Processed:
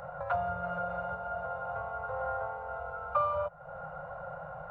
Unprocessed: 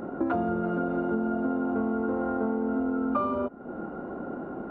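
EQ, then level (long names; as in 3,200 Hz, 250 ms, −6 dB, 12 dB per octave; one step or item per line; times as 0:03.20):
Chebyshev band-stop filter 160–530 Hz, order 4
0.0 dB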